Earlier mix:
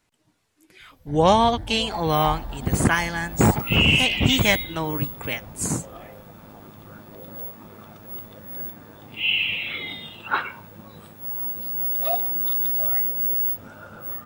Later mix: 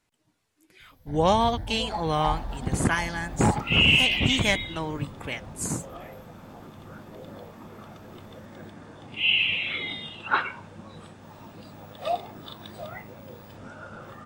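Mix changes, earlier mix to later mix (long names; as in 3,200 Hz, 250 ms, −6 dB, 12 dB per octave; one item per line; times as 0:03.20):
speech −4.5 dB
second sound: add low-pass filter 8,900 Hz 24 dB per octave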